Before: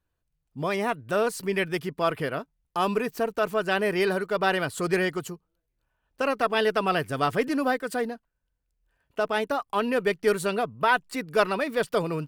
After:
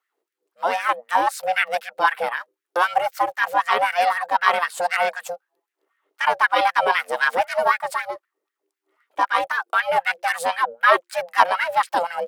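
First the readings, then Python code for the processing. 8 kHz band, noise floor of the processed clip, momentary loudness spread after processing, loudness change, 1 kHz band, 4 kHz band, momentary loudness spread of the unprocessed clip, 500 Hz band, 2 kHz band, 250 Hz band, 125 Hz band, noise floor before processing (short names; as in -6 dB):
+3.0 dB, -85 dBFS, 9 LU, +5.5 dB, +9.5 dB, +4.5 dB, 7 LU, -0.5 dB, +8.0 dB, -13.0 dB, under -15 dB, -79 dBFS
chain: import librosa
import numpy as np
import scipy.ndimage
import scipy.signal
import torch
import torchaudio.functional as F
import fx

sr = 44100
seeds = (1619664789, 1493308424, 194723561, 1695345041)

y = x * np.sin(2.0 * np.pi * 350.0 * np.arange(len(x)) / sr)
y = fx.low_shelf(y, sr, hz=230.0, db=-3.5)
y = fx.filter_lfo_highpass(y, sr, shape='sine', hz=3.9, low_hz=460.0, high_hz=1800.0, q=3.1)
y = y * 10.0 ** (5.5 / 20.0)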